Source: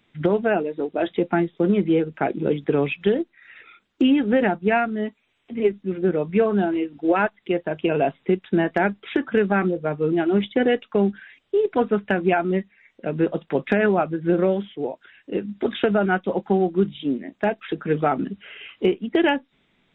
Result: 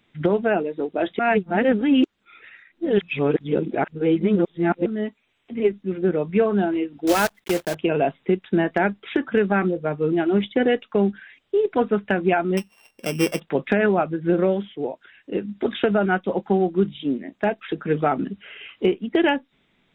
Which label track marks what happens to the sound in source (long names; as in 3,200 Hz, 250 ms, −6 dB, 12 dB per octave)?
1.190000	4.860000	reverse
7.070000	7.760000	one scale factor per block 3 bits
12.570000	13.400000	samples sorted by size in blocks of 16 samples